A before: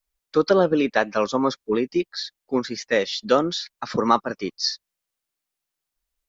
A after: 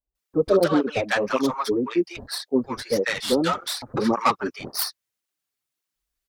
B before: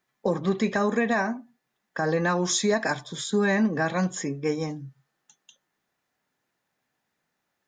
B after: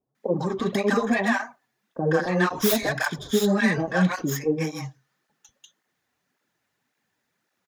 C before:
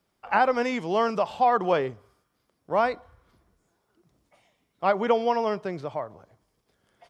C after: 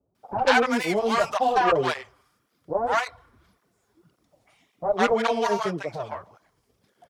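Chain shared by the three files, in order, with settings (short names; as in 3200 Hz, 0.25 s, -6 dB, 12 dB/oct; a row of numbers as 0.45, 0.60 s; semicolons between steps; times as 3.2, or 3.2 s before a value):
tracing distortion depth 0.17 ms; bands offset in time lows, highs 0.15 s, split 740 Hz; tape flanging out of phase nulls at 1.8 Hz, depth 6.5 ms; match loudness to -24 LUFS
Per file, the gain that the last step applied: +3.0, +6.0, +6.5 dB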